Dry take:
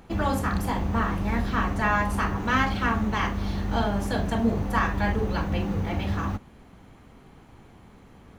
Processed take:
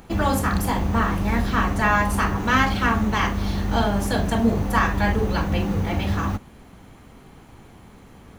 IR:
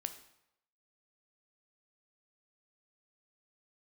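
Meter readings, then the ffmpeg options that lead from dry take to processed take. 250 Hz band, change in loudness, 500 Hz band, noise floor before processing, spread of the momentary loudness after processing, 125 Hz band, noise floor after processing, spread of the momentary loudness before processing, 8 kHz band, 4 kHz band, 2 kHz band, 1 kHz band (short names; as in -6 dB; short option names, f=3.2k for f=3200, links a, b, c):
+4.0 dB, +4.0 dB, +4.0 dB, -52 dBFS, 5 LU, +4.0 dB, -47 dBFS, 4 LU, +8.5 dB, +5.5 dB, +4.5 dB, +4.0 dB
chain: -af "highshelf=f=6k:g=7,volume=4dB"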